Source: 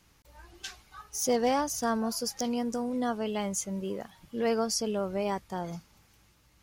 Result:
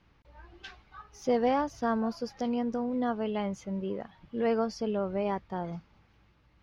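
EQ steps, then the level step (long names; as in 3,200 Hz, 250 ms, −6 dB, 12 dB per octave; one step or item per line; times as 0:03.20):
high-frequency loss of the air 290 metres
+1.0 dB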